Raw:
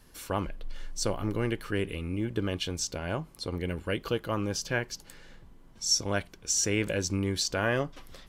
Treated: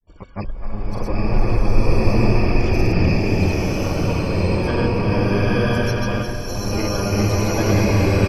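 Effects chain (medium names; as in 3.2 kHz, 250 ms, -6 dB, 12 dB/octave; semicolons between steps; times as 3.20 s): rattle on loud lows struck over -34 dBFS, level -17 dBFS; low-pass 1.2 kHz 6 dB/octave; gate with hold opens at -46 dBFS; bass shelf 87 Hz +10.5 dB; in parallel at -4.5 dB: saturation -25.5 dBFS, distortion -11 dB; on the sum: loudest bins only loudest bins 32; on a send: two-band feedback delay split 570 Hz, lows 486 ms, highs 337 ms, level -8 dB; on the sum: harmony voices -5 st -10 dB, +12 st -7 dB; granulator, pitch spread up and down by 0 st; swelling reverb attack 1080 ms, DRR -9 dB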